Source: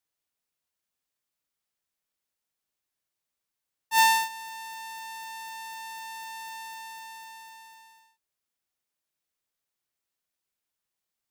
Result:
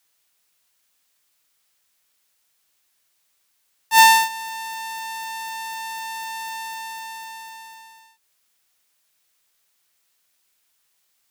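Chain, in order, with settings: mismatched tape noise reduction encoder only; gain +8.5 dB

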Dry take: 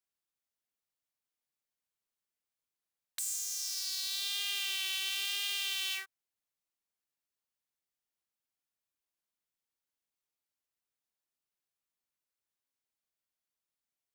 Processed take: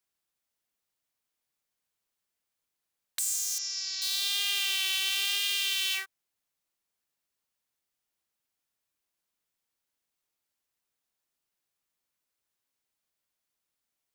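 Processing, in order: 3.58–4.02 rippled Chebyshev low-pass 7300 Hz, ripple 6 dB; 5.38–5.94 bell 870 Hz -8.5 dB 0.76 oct; gain +6 dB

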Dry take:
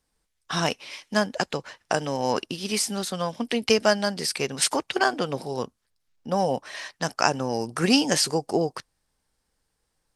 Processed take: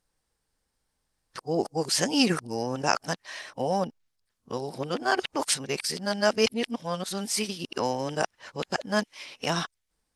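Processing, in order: whole clip reversed; gain -3 dB

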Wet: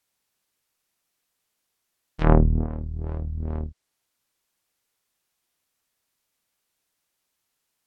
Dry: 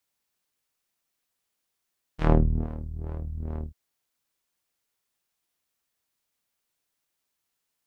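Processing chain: treble ducked by the level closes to 1600 Hz, closed at -23 dBFS; Doppler distortion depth 0.27 ms; gain +4 dB

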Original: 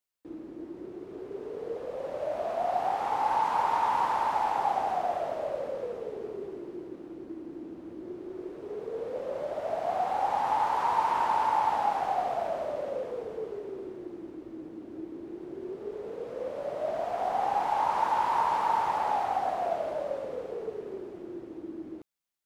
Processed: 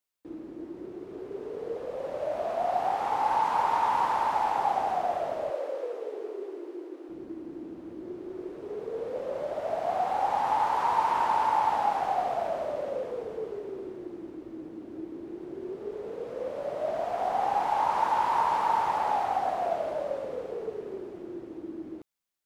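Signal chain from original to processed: 5.5–7.09 steep high-pass 290 Hz 48 dB/oct; gain +1 dB

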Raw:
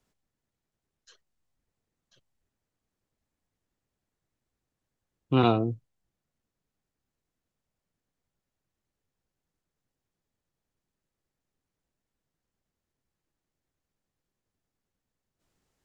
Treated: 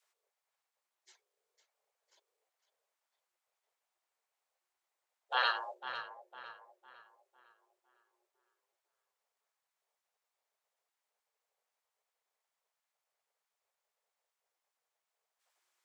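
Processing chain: frequency shift +360 Hz; tape echo 0.504 s, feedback 41%, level -9.5 dB, low-pass 3600 Hz; spectral gate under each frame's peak -10 dB weak

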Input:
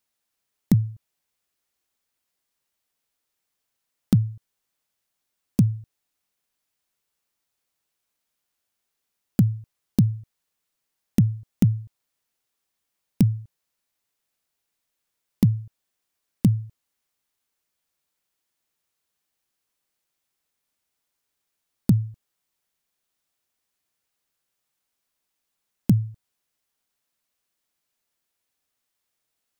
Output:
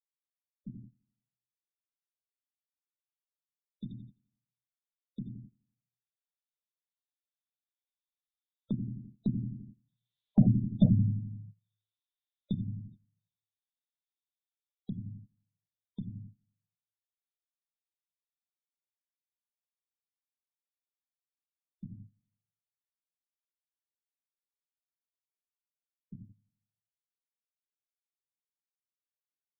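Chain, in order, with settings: Doppler pass-by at 10.59, 25 m/s, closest 7.8 m; on a send: feedback echo 85 ms, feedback 53%, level -7.5 dB; on the sum: overloaded stage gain 14.5 dB; synth low-pass 3600 Hz, resonance Q 13; shoebox room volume 160 m³, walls furnished, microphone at 1.2 m; gate -51 dBFS, range -17 dB; spectral gate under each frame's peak -25 dB strong; in parallel at +0.5 dB: compressor, threshold -38 dBFS, peak gain reduction 23 dB; on the sum: gain -4 dB

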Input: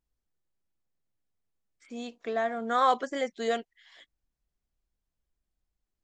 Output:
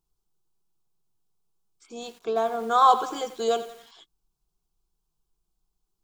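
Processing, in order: fixed phaser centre 380 Hz, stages 8; lo-fi delay 89 ms, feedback 55%, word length 8-bit, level -13 dB; gain +8 dB

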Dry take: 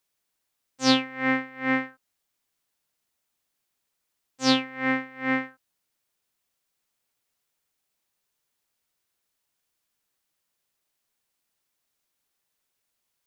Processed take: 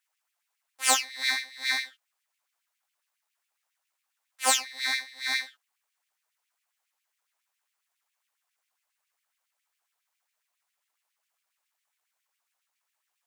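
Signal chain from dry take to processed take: graphic EQ 125/500/1000/2000/4000 Hz +6/-4/-7/+6/+10 dB; full-wave rectifier; LFO high-pass sine 7.3 Hz 720–2500 Hz; gain -2.5 dB

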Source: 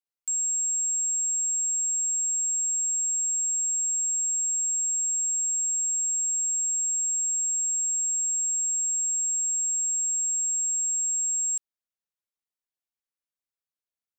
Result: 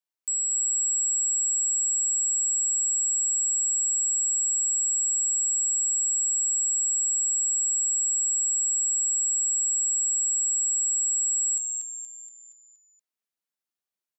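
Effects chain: frequency-shifting echo 0.236 s, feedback 49%, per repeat -120 Hz, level -5 dB; frequency shift +160 Hz

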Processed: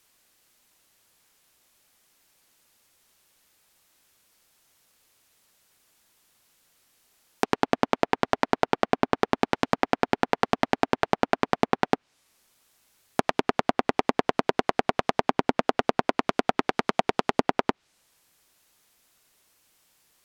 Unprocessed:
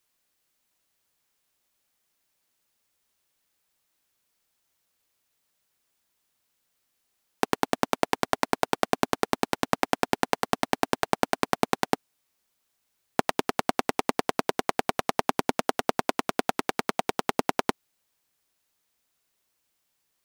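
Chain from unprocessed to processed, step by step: treble ducked by the level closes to 2000 Hz, closed at -24 dBFS; maximiser +12.5 dB; gain -1 dB

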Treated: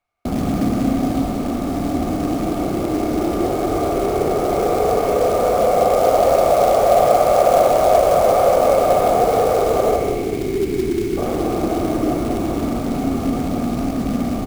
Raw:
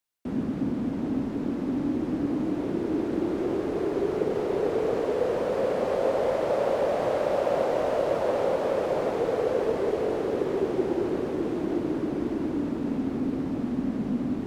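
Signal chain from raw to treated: RIAA curve playback; spectral delete 9.97–11.18, 450–1900 Hz; bell 200 Hz -2.5 dB 2.3 oct; in parallel at +1.5 dB: limiter -22.5 dBFS, peak gain reduction 11 dB; on the sum: vocal rider 2 s; small resonant body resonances 720/1200/2200 Hz, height 18 dB, ringing for 25 ms; short-mantissa float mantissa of 2-bit; on a send: echo 0.186 s -8 dB; on the sum: Schroeder reverb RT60 2 s, combs from 26 ms, DRR 5 dB; gain -4.5 dB

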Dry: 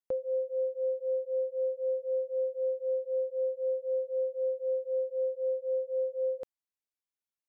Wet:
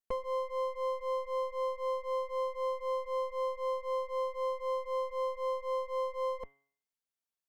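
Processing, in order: minimum comb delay 4.4 ms; de-hum 139 Hz, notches 28

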